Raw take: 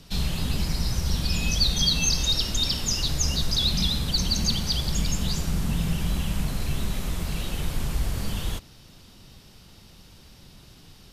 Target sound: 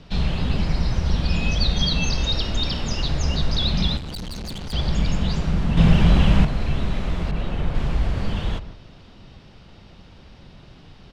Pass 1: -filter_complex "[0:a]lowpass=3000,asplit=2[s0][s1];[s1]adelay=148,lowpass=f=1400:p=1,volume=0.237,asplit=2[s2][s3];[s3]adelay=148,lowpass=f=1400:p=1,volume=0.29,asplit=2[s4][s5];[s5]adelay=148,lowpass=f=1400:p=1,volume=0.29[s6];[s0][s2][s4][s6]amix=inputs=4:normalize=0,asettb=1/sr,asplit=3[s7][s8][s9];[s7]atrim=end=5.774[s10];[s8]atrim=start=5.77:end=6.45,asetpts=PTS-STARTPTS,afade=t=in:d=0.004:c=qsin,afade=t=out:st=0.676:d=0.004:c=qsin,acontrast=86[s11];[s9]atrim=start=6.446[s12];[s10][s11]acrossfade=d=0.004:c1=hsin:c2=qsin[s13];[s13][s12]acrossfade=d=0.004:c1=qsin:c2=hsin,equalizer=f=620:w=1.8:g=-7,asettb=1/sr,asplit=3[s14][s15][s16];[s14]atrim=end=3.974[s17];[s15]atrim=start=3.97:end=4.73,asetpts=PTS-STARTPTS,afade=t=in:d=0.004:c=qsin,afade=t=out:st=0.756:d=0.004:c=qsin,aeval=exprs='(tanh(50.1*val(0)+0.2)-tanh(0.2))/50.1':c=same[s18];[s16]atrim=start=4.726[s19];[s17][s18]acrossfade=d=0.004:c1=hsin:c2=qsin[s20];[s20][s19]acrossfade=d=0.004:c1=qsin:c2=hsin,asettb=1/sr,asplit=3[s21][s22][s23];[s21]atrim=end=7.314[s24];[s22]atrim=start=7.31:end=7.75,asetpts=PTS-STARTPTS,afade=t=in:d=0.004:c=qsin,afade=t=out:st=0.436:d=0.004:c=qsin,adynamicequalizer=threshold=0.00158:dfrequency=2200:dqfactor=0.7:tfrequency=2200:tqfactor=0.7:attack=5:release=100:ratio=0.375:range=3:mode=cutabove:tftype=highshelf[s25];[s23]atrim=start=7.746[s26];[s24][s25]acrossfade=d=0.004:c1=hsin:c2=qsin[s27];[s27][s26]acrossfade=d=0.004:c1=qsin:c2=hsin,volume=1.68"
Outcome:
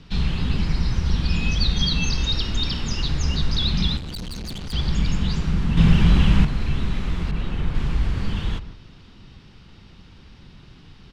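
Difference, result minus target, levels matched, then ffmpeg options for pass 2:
500 Hz band -5.0 dB
-filter_complex "[0:a]lowpass=3000,asplit=2[s0][s1];[s1]adelay=148,lowpass=f=1400:p=1,volume=0.237,asplit=2[s2][s3];[s3]adelay=148,lowpass=f=1400:p=1,volume=0.29,asplit=2[s4][s5];[s5]adelay=148,lowpass=f=1400:p=1,volume=0.29[s6];[s0][s2][s4][s6]amix=inputs=4:normalize=0,asettb=1/sr,asplit=3[s7][s8][s9];[s7]atrim=end=5.774[s10];[s8]atrim=start=5.77:end=6.45,asetpts=PTS-STARTPTS,afade=t=in:d=0.004:c=qsin,afade=t=out:st=0.676:d=0.004:c=qsin,acontrast=86[s11];[s9]atrim=start=6.446[s12];[s10][s11]acrossfade=d=0.004:c1=hsin:c2=qsin[s13];[s13][s12]acrossfade=d=0.004:c1=qsin:c2=hsin,equalizer=f=620:w=1.8:g=3,asettb=1/sr,asplit=3[s14][s15][s16];[s14]atrim=end=3.974[s17];[s15]atrim=start=3.97:end=4.73,asetpts=PTS-STARTPTS,afade=t=in:d=0.004:c=qsin,afade=t=out:st=0.756:d=0.004:c=qsin,aeval=exprs='(tanh(50.1*val(0)+0.2)-tanh(0.2))/50.1':c=same[s18];[s16]atrim=start=4.726[s19];[s17][s18]acrossfade=d=0.004:c1=hsin:c2=qsin[s20];[s20][s19]acrossfade=d=0.004:c1=qsin:c2=hsin,asettb=1/sr,asplit=3[s21][s22][s23];[s21]atrim=end=7.314[s24];[s22]atrim=start=7.31:end=7.75,asetpts=PTS-STARTPTS,afade=t=in:d=0.004:c=qsin,afade=t=out:st=0.436:d=0.004:c=qsin,adynamicequalizer=threshold=0.00158:dfrequency=2200:dqfactor=0.7:tfrequency=2200:tqfactor=0.7:attack=5:release=100:ratio=0.375:range=3:mode=cutabove:tftype=highshelf[s25];[s23]atrim=start=7.746[s26];[s24][s25]acrossfade=d=0.004:c1=hsin:c2=qsin[s27];[s27][s26]acrossfade=d=0.004:c1=qsin:c2=hsin,volume=1.68"

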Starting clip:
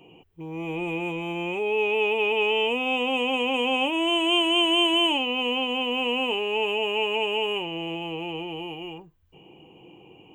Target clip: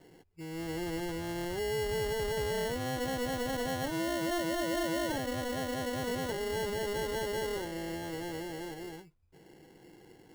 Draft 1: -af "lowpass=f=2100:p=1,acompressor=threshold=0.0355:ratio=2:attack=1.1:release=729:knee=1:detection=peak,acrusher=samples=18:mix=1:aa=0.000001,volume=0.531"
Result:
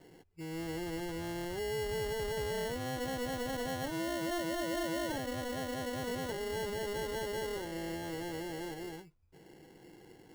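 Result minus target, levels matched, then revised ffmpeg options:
compression: peak gain reduction +3 dB
-af "lowpass=f=2100:p=1,acompressor=threshold=0.0708:ratio=2:attack=1.1:release=729:knee=1:detection=peak,acrusher=samples=18:mix=1:aa=0.000001,volume=0.531"

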